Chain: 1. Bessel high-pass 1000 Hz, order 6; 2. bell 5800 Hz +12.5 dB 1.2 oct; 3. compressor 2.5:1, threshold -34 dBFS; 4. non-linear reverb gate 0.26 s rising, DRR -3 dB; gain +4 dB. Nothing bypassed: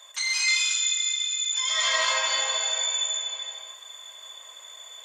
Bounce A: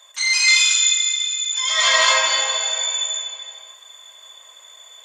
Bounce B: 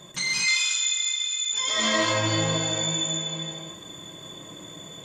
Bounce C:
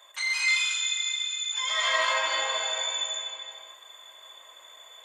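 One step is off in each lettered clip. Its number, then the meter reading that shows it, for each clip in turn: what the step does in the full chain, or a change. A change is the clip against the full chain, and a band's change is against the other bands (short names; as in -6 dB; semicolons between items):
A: 3, mean gain reduction 3.5 dB; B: 1, 500 Hz band +8.5 dB; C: 2, 8 kHz band -8.0 dB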